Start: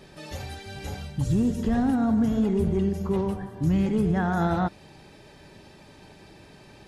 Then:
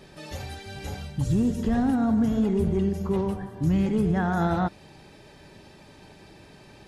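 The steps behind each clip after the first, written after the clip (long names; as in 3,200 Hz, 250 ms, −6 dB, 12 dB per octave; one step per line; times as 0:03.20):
no processing that can be heard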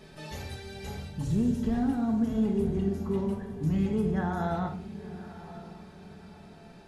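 speech leveller within 4 dB 2 s
feedback delay with all-pass diffusion 994 ms, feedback 42%, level −14.5 dB
convolution reverb RT60 0.60 s, pre-delay 5 ms, DRR 3.5 dB
level −7.5 dB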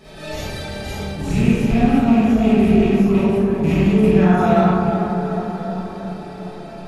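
loose part that buzzes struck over −27 dBFS, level −30 dBFS
tape delay 362 ms, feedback 75%, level −3 dB, low-pass 1,300 Hz
comb and all-pass reverb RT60 0.71 s, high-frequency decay 0.65×, pre-delay 10 ms, DRR −9 dB
level +4 dB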